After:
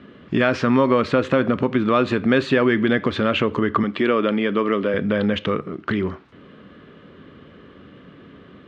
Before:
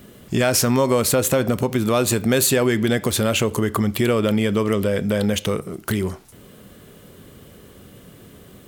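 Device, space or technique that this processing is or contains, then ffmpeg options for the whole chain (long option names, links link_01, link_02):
guitar cabinet: -filter_complex "[0:a]asettb=1/sr,asplit=3[link_01][link_02][link_03];[link_01]atrim=end=3.834[link_04];[link_02]atrim=start=3.83:end=4.94,asetpts=PTS-STARTPTS,afade=type=in:duration=0.004:curve=qsin,afade=type=out:start_time=1.106:duration=0.004:curve=qsin,highpass=210[link_05];[link_03]atrim=start=4.936[link_06];[link_04][link_05]acrossfade=duration=0.004:curve1=hsin:curve2=qsin[link_07];[link_07][link_06]acrossfade=duration=0.004:curve1=qsin:curve2=hsin,highpass=78,equalizer=frequency=110:width_type=q:width=4:gain=-6,equalizer=frequency=280:width_type=q:width=4:gain=5,equalizer=frequency=760:width_type=q:width=4:gain=-4,equalizer=frequency=1200:width_type=q:width=4:gain=6,equalizer=frequency=1700:width_type=q:width=4:gain=4,lowpass=frequency=3400:width=0.5412,lowpass=frequency=3400:width=1.3066"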